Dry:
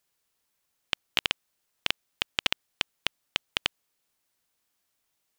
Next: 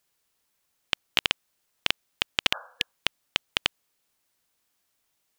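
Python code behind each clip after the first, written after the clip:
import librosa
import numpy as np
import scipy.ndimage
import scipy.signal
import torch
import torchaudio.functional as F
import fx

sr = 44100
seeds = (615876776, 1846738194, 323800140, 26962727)

y = fx.spec_repair(x, sr, seeds[0], start_s=2.56, length_s=0.4, low_hz=490.0, high_hz=1700.0, source='both')
y = y * librosa.db_to_amplitude(2.5)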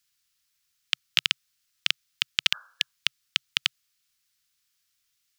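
y = fx.curve_eq(x, sr, hz=(130.0, 460.0, 730.0, 1300.0, 5100.0, 9100.0), db=(0, -19, -18, 0, 8, 3))
y = y * librosa.db_to_amplitude(-3.5)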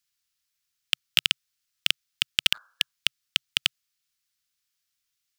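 y = fx.leveller(x, sr, passes=2)
y = y * librosa.db_to_amplitude(-1.5)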